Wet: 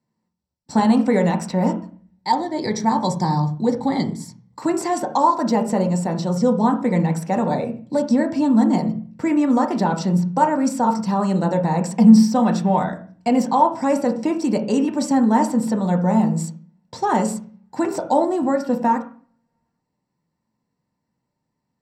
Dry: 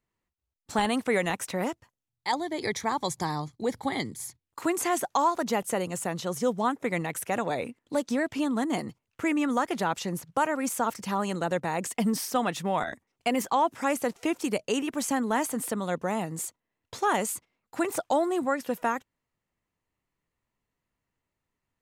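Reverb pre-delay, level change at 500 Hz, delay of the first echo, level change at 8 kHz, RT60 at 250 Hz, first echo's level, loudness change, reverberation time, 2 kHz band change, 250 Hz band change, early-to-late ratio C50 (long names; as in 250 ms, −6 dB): 3 ms, +7.0 dB, no echo audible, 0.0 dB, 0.70 s, no echo audible, +9.5 dB, 0.40 s, −0.5 dB, +13.0 dB, 10.5 dB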